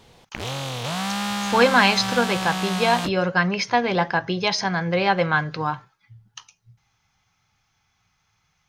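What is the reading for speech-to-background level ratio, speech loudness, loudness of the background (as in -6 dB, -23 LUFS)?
6.0 dB, -21.0 LUFS, -27.0 LUFS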